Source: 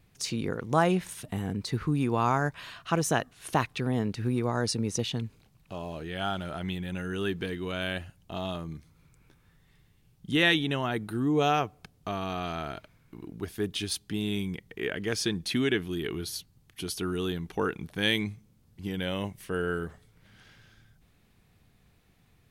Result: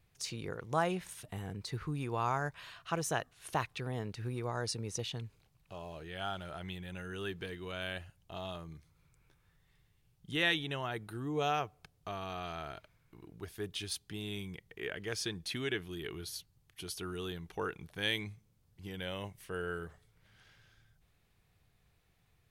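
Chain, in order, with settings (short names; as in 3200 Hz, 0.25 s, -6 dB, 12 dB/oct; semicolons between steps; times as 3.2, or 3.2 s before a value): bell 240 Hz -9 dB 0.85 oct; gain -6.5 dB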